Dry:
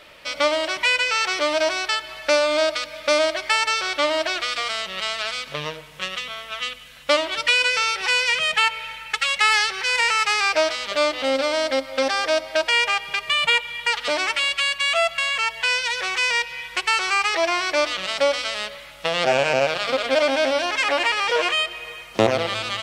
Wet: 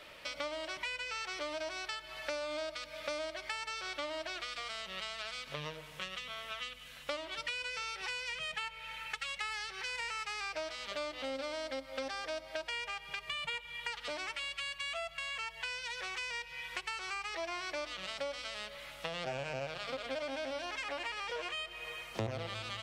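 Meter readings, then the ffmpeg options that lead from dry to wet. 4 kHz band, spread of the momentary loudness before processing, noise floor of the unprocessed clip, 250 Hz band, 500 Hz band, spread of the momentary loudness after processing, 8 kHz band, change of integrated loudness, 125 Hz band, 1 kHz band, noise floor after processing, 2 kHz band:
-18.0 dB, 9 LU, -41 dBFS, -17.0 dB, -19.0 dB, 4 LU, -18.0 dB, -18.5 dB, no reading, -18.5 dB, -52 dBFS, -18.0 dB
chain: -filter_complex "[0:a]acrossover=split=140[s0][s1];[s1]acompressor=threshold=0.0224:ratio=4[s2];[s0][s2]amix=inputs=2:normalize=0,volume=0.501"

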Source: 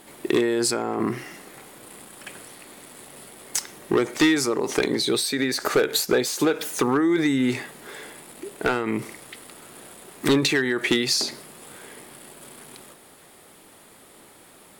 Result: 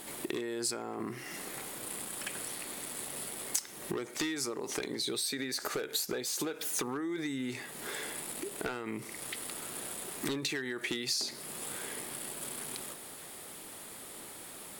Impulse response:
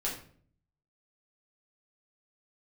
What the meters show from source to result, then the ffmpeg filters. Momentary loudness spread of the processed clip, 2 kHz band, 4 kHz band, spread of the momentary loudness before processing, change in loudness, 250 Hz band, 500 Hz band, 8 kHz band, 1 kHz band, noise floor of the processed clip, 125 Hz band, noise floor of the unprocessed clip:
10 LU, -12.0 dB, -9.5 dB, 22 LU, -13.5 dB, -14.5 dB, -14.5 dB, -5.0 dB, -12.0 dB, -47 dBFS, -13.5 dB, -51 dBFS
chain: -af "acompressor=threshold=0.0141:ratio=4,highshelf=f=3500:g=6.5"

